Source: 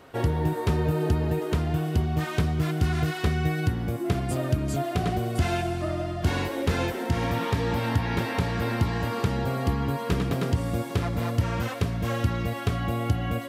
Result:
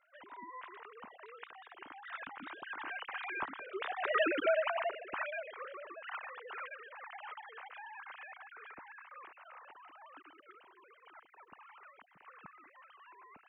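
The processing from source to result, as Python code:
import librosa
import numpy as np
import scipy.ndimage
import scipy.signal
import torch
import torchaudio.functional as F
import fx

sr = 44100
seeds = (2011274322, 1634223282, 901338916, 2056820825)

y = fx.sine_speech(x, sr)
y = fx.doppler_pass(y, sr, speed_mps=23, closest_m=2.3, pass_at_s=4.32)
y = fx.rider(y, sr, range_db=4, speed_s=2.0)
y = fx.low_shelf_res(y, sr, hz=730.0, db=-12.0, q=1.5)
y = y * 10.0 ** (6.5 / 20.0)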